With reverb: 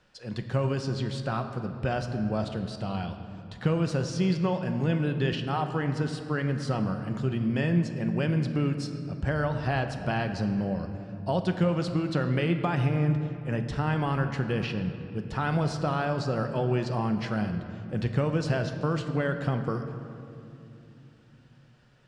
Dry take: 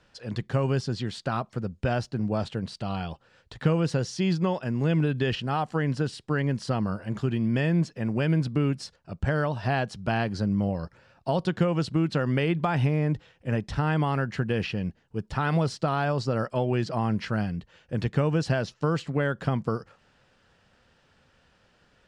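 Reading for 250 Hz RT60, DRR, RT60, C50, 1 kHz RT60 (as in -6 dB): 4.3 s, 6.5 dB, 2.8 s, 8.5 dB, 2.5 s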